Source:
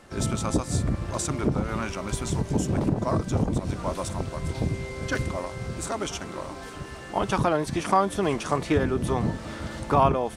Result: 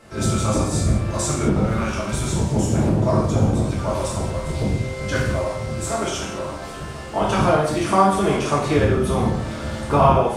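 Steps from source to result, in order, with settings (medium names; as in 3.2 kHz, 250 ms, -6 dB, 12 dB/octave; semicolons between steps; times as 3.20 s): gated-style reverb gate 250 ms falling, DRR -6 dB; trim -1 dB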